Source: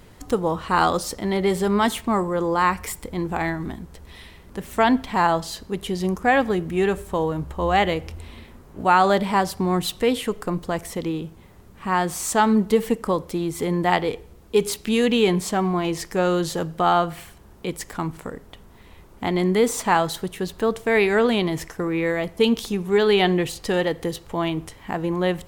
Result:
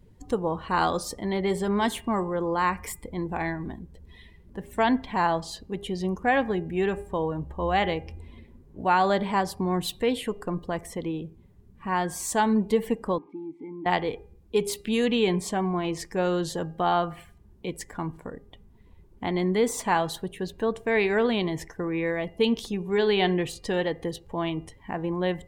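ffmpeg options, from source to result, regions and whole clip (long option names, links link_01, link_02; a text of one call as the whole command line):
ffmpeg -i in.wav -filter_complex "[0:a]asettb=1/sr,asplit=3[link_01][link_02][link_03];[link_01]atrim=end=13.184[link_04];[link_02]atrim=start=13.18:end=13.86,asetpts=PTS-STARTPTS,afade=type=in:duration=0.004:curve=qsin,afade=type=out:start_time=0.676:duration=0.004:curve=qsin,aeval=exprs='val(0)+0.5*0.0251*sgn(val(0))':channel_layout=same,asplit=3[link_05][link_06][link_07];[link_05]bandpass=frequency=300:width_type=q:width=8,volume=0dB[link_08];[link_06]bandpass=frequency=870:width_type=q:width=8,volume=-6dB[link_09];[link_07]bandpass=frequency=2240:width_type=q:width=8,volume=-9dB[link_10];[link_08][link_09][link_10]amix=inputs=3:normalize=0,equalizer=frequency=8300:width=0.52:gain=-4.5[link_11];[link_03]atrim=start=13.856[link_12];[link_04][link_11]acrossfade=duration=0.004:curve1=hsin:curve2=qsin[link_13];[link_13][link_12]acrossfade=duration=0.004:curve1=qsin:curve2=hsin,bandreject=frequency=1300:width=10,afftdn=noise_reduction=15:noise_floor=-43,bandreject=frequency=403.6:width_type=h:width=4,bandreject=frequency=807.2:width_type=h:width=4,bandreject=frequency=1210.8:width_type=h:width=4,bandreject=frequency=1614.4:width_type=h:width=4,bandreject=frequency=2018:width_type=h:width=4,bandreject=frequency=2421.6:width_type=h:width=4,bandreject=frequency=2825.2:width_type=h:width=4,volume=-4.5dB" out.wav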